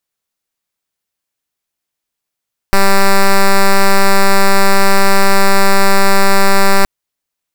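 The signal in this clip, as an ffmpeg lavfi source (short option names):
-f lavfi -i "aevalsrc='0.473*(2*lt(mod(196*t,1),0.06)-1)':d=4.12:s=44100"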